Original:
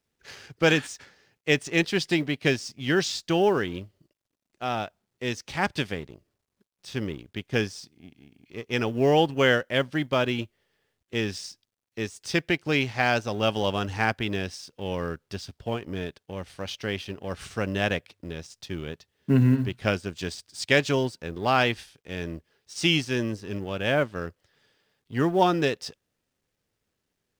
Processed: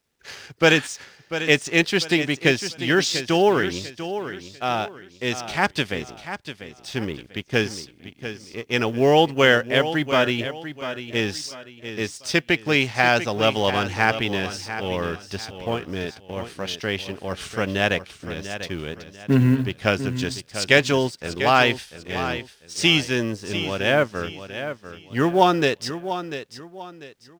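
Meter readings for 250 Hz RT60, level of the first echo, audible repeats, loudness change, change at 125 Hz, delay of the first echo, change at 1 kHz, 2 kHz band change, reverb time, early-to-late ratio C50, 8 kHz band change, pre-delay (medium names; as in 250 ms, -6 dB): no reverb, -11.0 dB, 3, +4.5 dB, +2.5 dB, 694 ms, +5.5 dB, +6.0 dB, no reverb, no reverb, +6.5 dB, no reverb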